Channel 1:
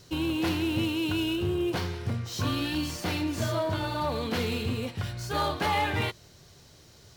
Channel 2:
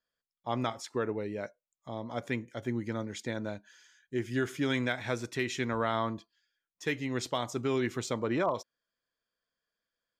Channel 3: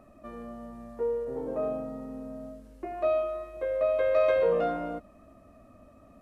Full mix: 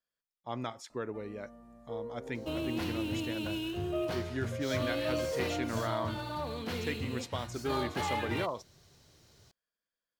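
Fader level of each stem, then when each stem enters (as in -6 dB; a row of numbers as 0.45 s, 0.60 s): -7.5 dB, -5.5 dB, -11.0 dB; 2.35 s, 0.00 s, 0.90 s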